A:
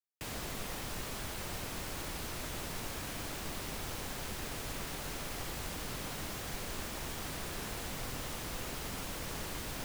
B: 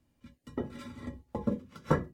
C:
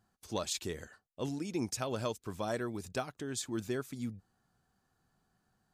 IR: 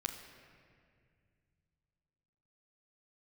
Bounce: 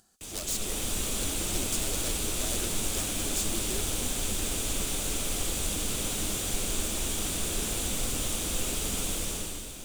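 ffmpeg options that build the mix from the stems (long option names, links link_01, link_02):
-filter_complex "[0:a]aemphasis=mode=reproduction:type=50kf,dynaudnorm=framelen=130:gausssize=9:maxgain=12dB,aexciter=amount=1.8:drive=3.7:freq=2700,volume=-4dB,asplit=2[link_01][link_02];[link_02]volume=-7dB[link_03];[2:a]lowshelf=frequency=500:gain=-8.5,aeval=exprs='(mod(35.5*val(0)+1,2)-1)/35.5':channel_layout=same,volume=2.5dB[link_04];[3:a]atrim=start_sample=2205[link_05];[link_03][link_05]afir=irnorm=-1:irlink=0[link_06];[link_01][link_04][link_06]amix=inputs=3:normalize=0,acompressor=mode=upward:threshold=-55dB:ratio=2.5,equalizer=frequency=125:width_type=o:width=1:gain=-9,equalizer=frequency=1000:width_type=o:width=1:gain=-9,equalizer=frequency=2000:width_type=o:width=1:gain=-6,equalizer=frequency=8000:width_type=o:width=1:gain=8"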